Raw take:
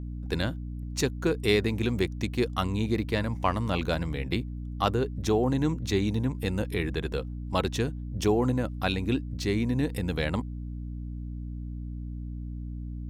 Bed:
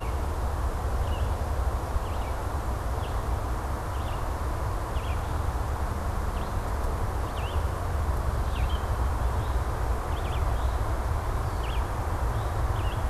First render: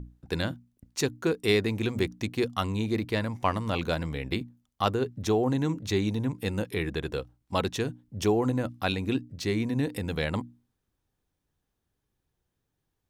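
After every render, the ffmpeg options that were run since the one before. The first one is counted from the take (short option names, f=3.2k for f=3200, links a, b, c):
-af "bandreject=f=60:t=h:w=6,bandreject=f=120:t=h:w=6,bandreject=f=180:t=h:w=6,bandreject=f=240:t=h:w=6,bandreject=f=300:t=h:w=6"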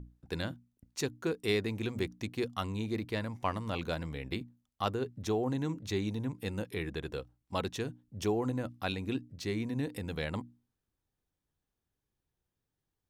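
-af "volume=-6.5dB"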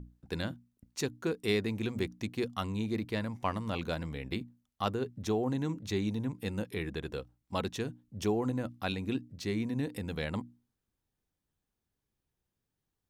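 -af "equalizer=f=210:t=o:w=0.44:g=3.5"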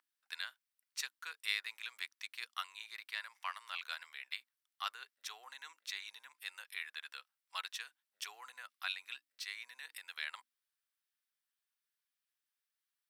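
-af "highpass=f=1.3k:w=0.5412,highpass=f=1.3k:w=1.3066,equalizer=f=6.7k:w=6.1:g=-7"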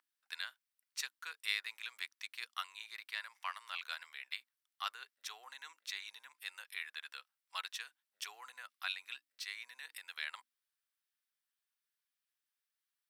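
-af anull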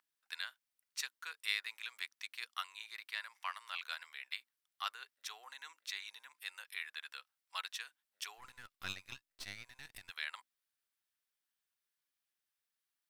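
-filter_complex "[0:a]asplit=3[a][b][c];[a]afade=t=out:st=8.37:d=0.02[d];[b]aeval=exprs='if(lt(val(0),0),0.251*val(0),val(0))':c=same,afade=t=in:st=8.37:d=0.02,afade=t=out:st=10.09:d=0.02[e];[c]afade=t=in:st=10.09:d=0.02[f];[d][e][f]amix=inputs=3:normalize=0"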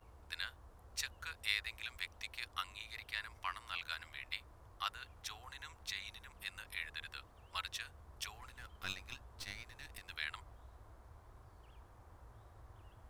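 -filter_complex "[1:a]volume=-30.5dB[a];[0:a][a]amix=inputs=2:normalize=0"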